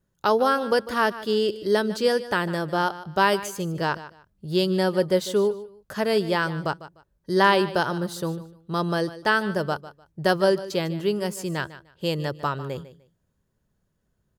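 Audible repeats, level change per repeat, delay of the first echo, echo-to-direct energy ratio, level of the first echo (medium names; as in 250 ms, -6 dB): 2, -13.0 dB, 150 ms, -15.5 dB, -15.5 dB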